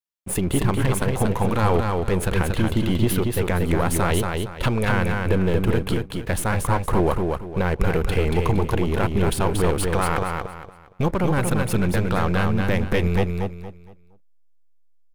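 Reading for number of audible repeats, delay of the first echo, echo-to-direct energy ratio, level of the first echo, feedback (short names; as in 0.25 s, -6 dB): 3, 0.232 s, -3.5 dB, -4.0 dB, 30%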